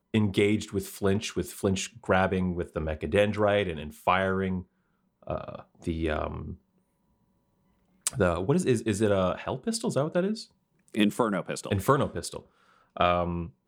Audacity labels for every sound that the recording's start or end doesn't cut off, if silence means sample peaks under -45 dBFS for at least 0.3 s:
5.230000	6.550000	sound
8.060000	10.450000	sound
10.880000	12.410000	sound